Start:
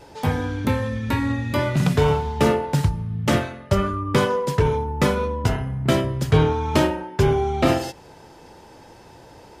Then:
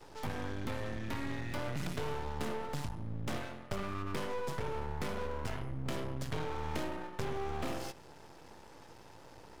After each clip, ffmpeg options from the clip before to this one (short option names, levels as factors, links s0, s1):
-filter_complex "[0:a]acrossover=split=530|7300[s0][s1][s2];[s0]acompressor=threshold=0.0631:ratio=4[s3];[s1]acompressor=threshold=0.0447:ratio=4[s4];[s2]acompressor=threshold=0.00631:ratio=4[s5];[s3][s4][s5]amix=inputs=3:normalize=0,aeval=exprs='0.355*(cos(1*acos(clip(val(0)/0.355,-1,1)))-cos(1*PI/2))+0.0708*(cos(4*acos(clip(val(0)/0.355,-1,1)))-cos(4*PI/2))':c=same,aeval=exprs='max(val(0),0)':c=same,volume=0.596"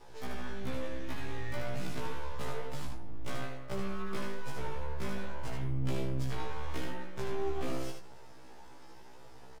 -af "flanger=delay=4.1:depth=9.7:regen=84:speed=0.32:shape=sinusoidal,aecho=1:1:76:0.562,afftfilt=real='re*1.73*eq(mod(b,3),0)':imag='im*1.73*eq(mod(b,3),0)':win_size=2048:overlap=0.75,volume=1.78"